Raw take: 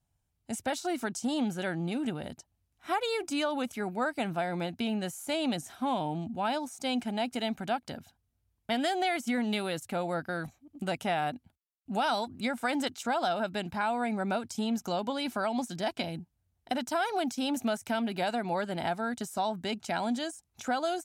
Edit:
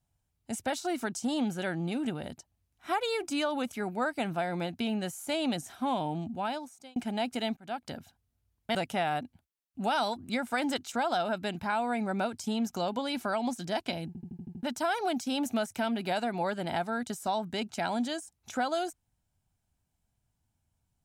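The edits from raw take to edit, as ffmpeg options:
-filter_complex "[0:a]asplit=11[a][b][c][d][e][f][g][h][i][j][k];[a]atrim=end=6.96,asetpts=PTS-STARTPTS,afade=t=out:st=6.3:d=0.66[l];[b]atrim=start=6.96:end=7.57,asetpts=PTS-STARTPTS,afade=t=in:d=0.004:c=hsin,afade=t=out:st=0.606:d=0.004:c=hsin[m];[c]atrim=start=7.57:end=8.752,asetpts=PTS-STARTPTS,afade=t=in:d=0.3[n];[d]atrim=start=10.858:end=16.262[o];[e]atrim=start=16.178:end=16.262[p];[f]atrim=start=16.178:end=16.262[q];[g]atrim=start=16.178:end=16.262[r];[h]atrim=start=16.178:end=16.262[s];[i]atrim=start=16.178:end=16.262[t];[j]atrim=start=16.178:end=16.262[u];[k]atrim=start=16.738[v];[l][m][n]concat=n=3:v=0:a=1[w];[w][o]acrossfade=d=0.004:c1=hsin:c2=hsin[x];[x][p]acrossfade=d=0.004:c1=hsin:c2=hsin[y];[y][q]acrossfade=d=0.004:c1=hsin:c2=hsin[z];[z][r]acrossfade=d=0.004:c1=hsin:c2=hsin[aa];[aa][s]acrossfade=d=0.004:c1=hsin:c2=hsin[ab];[ab][t]acrossfade=d=0.004:c1=hsin:c2=hsin[ac];[ac][u]acrossfade=d=0.004:c1=hsin:c2=hsin[ad];[ad][v]acrossfade=d=0.004:c1=hsin:c2=hsin"

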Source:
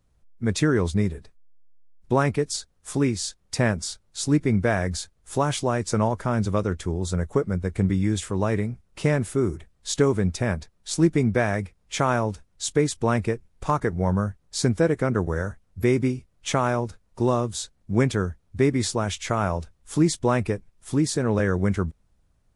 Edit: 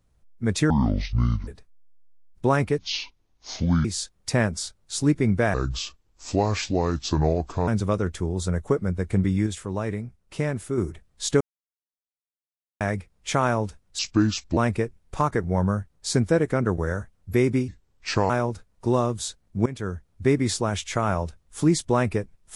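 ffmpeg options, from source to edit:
-filter_complex "[0:a]asplit=16[a][b][c][d][e][f][g][h][i][j][k][l][m][n][o][p];[a]atrim=end=0.704[q];[b]atrim=start=0.7:end=1.14,asetpts=PTS-STARTPTS,asetrate=25137,aresample=44100,atrim=end_sample=34042,asetpts=PTS-STARTPTS[r];[c]atrim=start=1.136:end=2.454[s];[d]atrim=start=2.45:end=3.1,asetpts=PTS-STARTPTS,asetrate=26901,aresample=44100[t];[e]atrim=start=3.096:end=4.794[u];[f]atrim=start=4.79:end=6.33,asetpts=PTS-STARTPTS,asetrate=31752,aresample=44100[v];[g]atrim=start=6.326:end=8.122[w];[h]atrim=start=8.118:end=9.432,asetpts=PTS-STARTPTS,volume=-4.5dB[x];[i]atrim=start=9.428:end=10.06,asetpts=PTS-STARTPTS,afade=t=out:st=0.628:d=0.004:c=hsin[y];[j]atrim=start=10.06:end=11.46,asetpts=PTS-STARTPTS,volume=0[z];[k]atrim=start=11.46:end=12.644,asetpts=PTS-STARTPTS,afade=t=in:d=0.004:c=hsin[aa];[l]atrim=start=12.64:end=13.06,asetpts=PTS-STARTPTS,asetrate=31752,aresample=44100[ab];[m]atrim=start=13.056:end=16.174[ac];[n]atrim=start=16.17:end=16.64,asetpts=PTS-STARTPTS,asetrate=33516,aresample=44100,atrim=end_sample=27272,asetpts=PTS-STARTPTS[ad];[o]atrim=start=16.636:end=18,asetpts=PTS-STARTPTS,afade=t=out:st=1.36:d=0.004:c=hsin:silence=0.11885[ae];[p]atrim=start=18,asetpts=PTS-STARTPTS,afade=t=in:d=0.43:silence=0.11885[af];[q][r]acrossfade=d=0.004:c1=hsin:c2=hsin[ag];[ag][s]acrossfade=d=0.004:c1=hsin:c2=hsin[ah];[ah][t]acrossfade=d=0.004:c1=hsin:c2=hsin[ai];[ai][u]acrossfade=d=0.004:c1=hsin:c2=hsin[aj];[aj][v]acrossfade=d=0.004:c1=hsin:c2=hsin[ak];[ak][w]acrossfade=d=0.004:c1=hsin:c2=hsin[al];[al][x]acrossfade=d=0.004:c1=hsin:c2=hsin[am];[y][z][aa]concat=n=3:v=0:a=1[an];[am][an]acrossfade=d=0.004:c1=hsin:c2=hsin[ao];[ao][ab]acrossfade=d=0.004:c1=hsin:c2=hsin[ap];[ap][ac]acrossfade=d=0.004:c1=hsin:c2=hsin[aq];[aq][ad]acrossfade=d=0.004:c1=hsin:c2=hsin[ar];[ae][af]concat=n=2:v=0:a=1[as];[ar][as]acrossfade=d=0.004:c1=hsin:c2=hsin"

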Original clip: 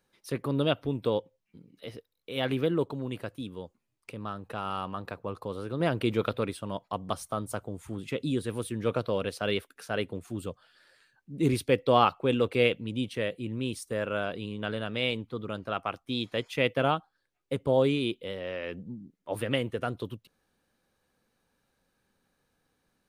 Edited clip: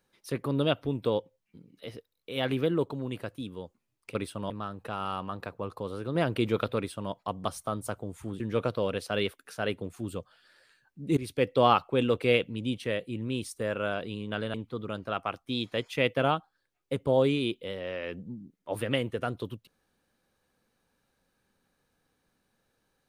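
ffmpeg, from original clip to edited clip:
-filter_complex "[0:a]asplit=6[a][b][c][d][e][f];[a]atrim=end=4.152[g];[b]atrim=start=6.418:end=6.772[h];[c]atrim=start=4.148:end=8.052[i];[d]atrim=start=8.708:end=11.48,asetpts=PTS-STARTPTS,afade=t=out:st=2.768:d=0.004:c=hsin:silence=0.16788[j];[e]atrim=start=11.48:end=14.852,asetpts=PTS-STARTPTS,afade=t=in:d=0.46:c=qsin:silence=0.16788[k];[f]atrim=start=15.138[l];[g][h]acrossfade=d=0.004:c1=hsin:c2=hsin[m];[m][i]acrossfade=d=0.004:c1=hsin:c2=hsin[n];[j][k]concat=n=2:v=0:a=1[o];[n][o]acrossfade=d=0.004:c1=hsin:c2=hsin[p];[p][l]acrossfade=d=0.004:c1=hsin:c2=hsin"

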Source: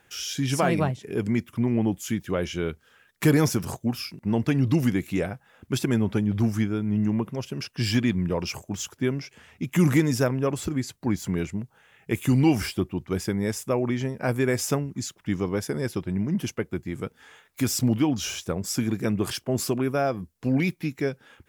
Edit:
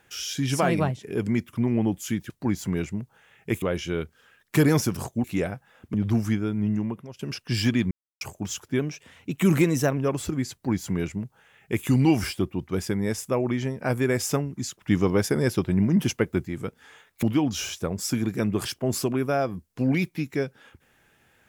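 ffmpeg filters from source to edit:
-filter_complex "[0:a]asplit=13[a][b][c][d][e][f][g][h][i][j][k][l][m];[a]atrim=end=2.302[n];[b]atrim=start=10.908:end=12.232[o];[c]atrim=start=2.298:end=3.922[p];[d]atrim=start=5.028:end=5.732[q];[e]atrim=start=6.228:end=7.48,asetpts=PTS-STARTPTS,afade=t=out:st=0.682:d=0.57:silence=0.16788[r];[f]atrim=start=7.48:end=8.2,asetpts=PTS-STARTPTS,afade=t=in:d=0.004:c=hsin:silence=0.16788,afade=t=out:st=0.716:d=0.004:c=hsin[s];[g]atrim=start=8.2:end=8.5,asetpts=PTS-STARTPTS,volume=0[t];[h]atrim=start=8.5:end=9.084,asetpts=PTS-STARTPTS,afade=t=in:d=0.004:c=hsin[u];[i]atrim=start=9.08:end=10.36,asetpts=PTS-STARTPTS,asetrate=47628,aresample=44100[v];[j]atrim=start=10.356:end=15.202[w];[k]atrim=start=15.198:end=16.862,asetpts=PTS-STARTPTS,volume=5dB[x];[l]atrim=start=16.858:end=17.612[y];[m]atrim=start=17.878[z];[n][o]acrossfade=d=0.004:c1=hsin:c2=hsin[aa];[aa][p]acrossfade=d=0.004:c1=hsin:c2=hsin[ab];[ab][q]acrossfade=d=0.004:c1=hsin:c2=hsin[ac];[r][s][t][u]concat=n=4:v=0:a=1[ad];[ac][ad]acrossfade=d=0.004:c1=hsin:c2=hsin[ae];[ae][v]acrossfade=d=0.004:c1=hsin:c2=hsin[af];[af][w]acrossfade=d=0.004:c1=hsin:c2=hsin[ag];[ag][x]acrossfade=d=0.004:c1=hsin:c2=hsin[ah];[ah][y]acrossfade=d=0.004:c1=hsin:c2=hsin[ai];[ai][z]acrossfade=d=0.004:c1=hsin:c2=hsin"

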